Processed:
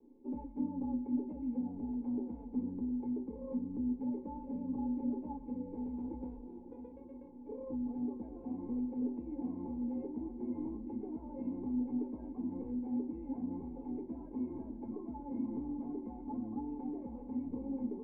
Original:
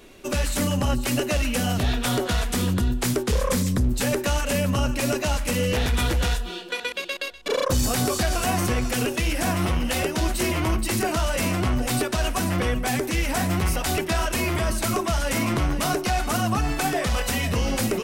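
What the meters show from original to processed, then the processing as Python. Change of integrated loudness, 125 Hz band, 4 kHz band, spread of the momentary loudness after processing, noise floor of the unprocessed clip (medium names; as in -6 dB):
-15.5 dB, -27.5 dB, under -40 dB, 7 LU, -33 dBFS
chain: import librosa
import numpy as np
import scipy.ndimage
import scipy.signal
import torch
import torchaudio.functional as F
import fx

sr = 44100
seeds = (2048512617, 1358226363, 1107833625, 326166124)

y = fx.peak_eq(x, sr, hz=440.0, db=13.0, octaves=0.25)
y = fx.rider(y, sr, range_db=3, speed_s=0.5)
y = fx.formant_cascade(y, sr, vowel='u')
y = fx.comb_fb(y, sr, f0_hz=530.0, decay_s=0.22, harmonics='all', damping=0.0, mix_pct=90)
y = fx.small_body(y, sr, hz=(250.0, 860.0), ring_ms=85, db=17)
y = fx.vibrato(y, sr, rate_hz=0.36, depth_cents=11.0)
y = fx.echo_diffused(y, sr, ms=786, feedback_pct=69, wet_db=-13.5)
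y = F.gain(torch.from_numpy(y), 1.5).numpy()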